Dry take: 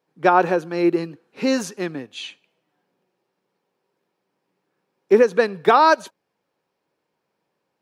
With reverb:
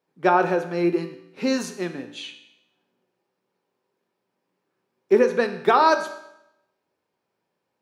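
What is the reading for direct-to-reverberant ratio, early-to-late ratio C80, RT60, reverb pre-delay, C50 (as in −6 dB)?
6.5 dB, 12.5 dB, 0.85 s, 3 ms, 10.0 dB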